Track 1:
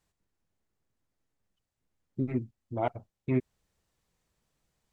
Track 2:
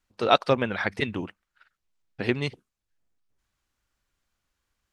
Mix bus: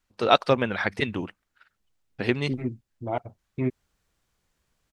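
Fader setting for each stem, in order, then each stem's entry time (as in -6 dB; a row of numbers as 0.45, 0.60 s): +1.0, +1.0 dB; 0.30, 0.00 s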